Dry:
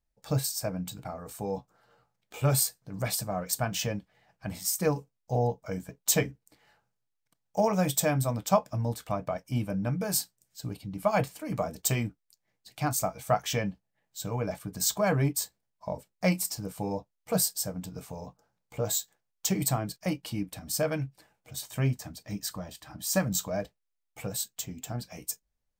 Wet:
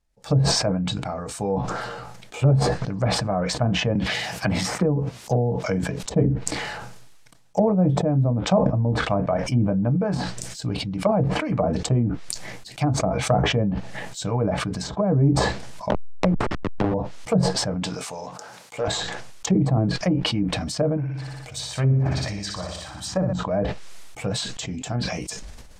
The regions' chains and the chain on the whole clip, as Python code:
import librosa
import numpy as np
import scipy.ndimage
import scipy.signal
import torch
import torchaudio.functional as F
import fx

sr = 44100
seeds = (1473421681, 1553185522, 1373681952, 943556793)

y = fx.chain(x, sr, fx.highpass(hz=57.0, slope=12),
    fx.peak_eq(hz=14000.0, db=11.0, octaves=0.74),
    fx.band_squash(depth_pct=70), at=(3.95, 6.03))
y = fx.chain(y, sr, fx.delta_hold(step_db=-26.5),
    fx.band_squash(depth_pct=100), at=(15.9, 16.94))
y = fx.chain(y, sr, fx.highpass(hz=760.0, slope=6),
    fx.leveller(passes=1), at=(17.83, 18.88))
y = fx.chain(y, sr, fx.peak_eq(hz=230.0, db=-9.0, octaves=1.4),
    fx.room_flutter(wall_m=10.3, rt60_s=0.77), at=(20.97, 23.33))
y = scipy.signal.sosfilt(scipy.signal.butter(2, 9900.0, 'lowpass', fs=sr, output='sos'), y)
y = fx.env_lowpass_down(y, sr, base_hz=460.0, full_db=-24.5)
y = fx.sustainer(y, sr, db_per_s=31.0)
y = y * librosa.db_to_amplitude(8.0)